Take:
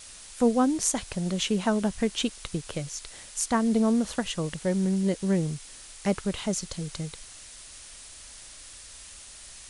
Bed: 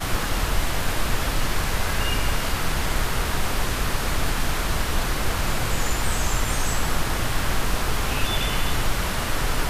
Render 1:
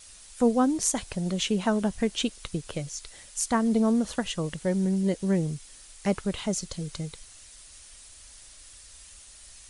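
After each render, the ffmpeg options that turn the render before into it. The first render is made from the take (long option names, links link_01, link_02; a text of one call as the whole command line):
ffmpeg -i in.wav -af "afftdn=noise_reduction=6:noise_floor=-47" out.wav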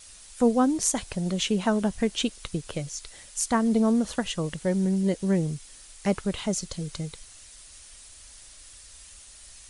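ffmpeg -i in.wav -af "volume=1dB" out.wav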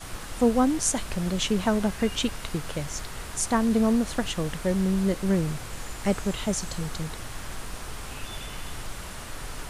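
ffmpeg -i in.wav -i bed.wav -filter_complex "[1:a]volume=-13.5dB[link_01];[0:a][link_01]amix=inputs=2:normalize=0" out.wav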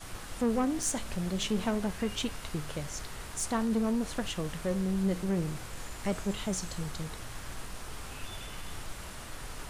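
ffmpeg -i in.wav -af "aeval=exprs='(tanh(7.94*val(0)+0.2)-tanh(0.2))/7.94':channel_layout=same,flanger=delay=9.4:depth=8.4:regen=80:speed=0.47:shape=triangular" out.wav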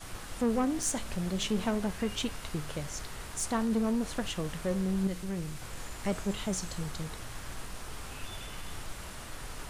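ffmpeg -i in.wav -filter_complex "[0:a]asettb=1/sr,asplit=3[link_01][link_02][link_03];[link_01]atrim=end=5.074[link_04];[link_02]atrim=start=5.07:end=5.62,asetpts=PTS-STARTPTS,afade=type=in:duration=0.004:curve=qsin,afade=type=out:start_time=0.546:duration=0.004:curve=qsin,equalizer=frequency=430:width=0.31:gain=-7[link_05];[link_03]atrim=start=5.616[link_06];[link_04][link_05]acrossfade=duration=0.004:curve1=hsin:curve2=qsin[link_07];[link_07][link_06]acrossfade=duration=0.004:curve1=qsin:curve2=hsin" out.wav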